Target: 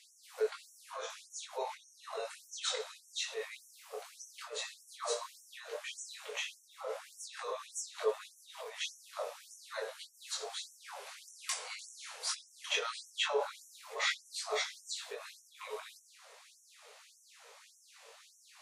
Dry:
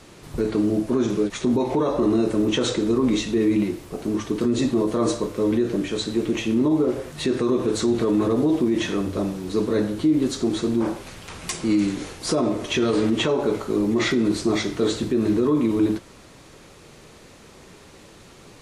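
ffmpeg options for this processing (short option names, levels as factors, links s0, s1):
-af "flanger=delay=18.5:depth=5.3:speed=0.12,afftfilt=real='re*gte(b*sr/1024,410*pow(5600/410,0.5+0.5*sin(2*PI*1.7*pts/sr)))':imag='im*gte(b*sr/1024,410*pow(5600/410,0.5+0.5*sin(2*PI*1.7*pts/sr)))':win_size=1024:overlap=0.75,volume=0.668"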